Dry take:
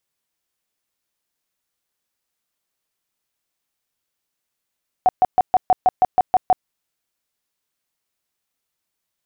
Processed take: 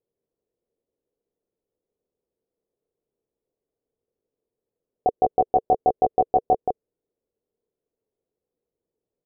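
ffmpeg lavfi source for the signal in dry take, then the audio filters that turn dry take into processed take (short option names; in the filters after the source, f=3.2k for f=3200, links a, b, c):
-f lavfi -i "aevalsrc='0.335*sin(2*PI*741*mod(t,0.16))*lt(mod(t,0.16),21/741)':d=1.6:s=44100"
-filter_complex "[0:a]lowpass=f=450:t=q:w=4.9,asplit=2[a][b];[b]aecho=0:1:176:0.631[c];[a][c]amix=inputs=2:normalize=0"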